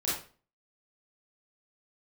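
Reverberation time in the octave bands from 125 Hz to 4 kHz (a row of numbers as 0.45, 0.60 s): 0.45, 0.45, 0.40, 0.35, 0.35, 0.35 s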